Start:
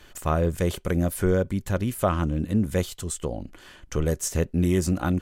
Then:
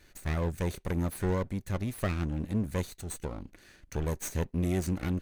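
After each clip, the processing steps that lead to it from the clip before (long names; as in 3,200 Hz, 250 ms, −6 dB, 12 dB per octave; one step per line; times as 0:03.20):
lower of the sound and its delayed copy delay 0.48 ms
level −7 dB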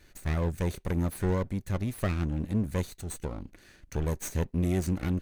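low-shelf EQ 320 Hz +2.5 dB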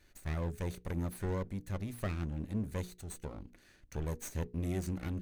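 mains-hum notches 60/120/180/240/300/360/420/480 Hz
level −7 dB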